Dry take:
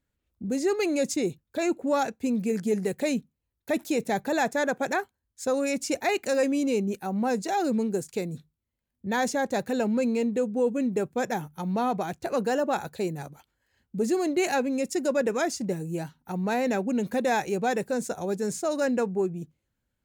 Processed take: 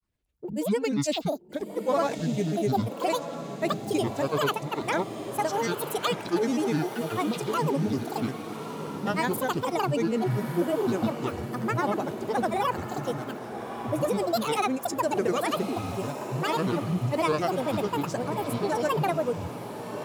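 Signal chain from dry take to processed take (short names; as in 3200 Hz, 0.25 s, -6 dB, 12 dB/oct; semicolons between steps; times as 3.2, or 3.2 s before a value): grains, pitch spread up and down by 12 st; on a send: diffused feedback echo 1.256 s, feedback 53%, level -9 dB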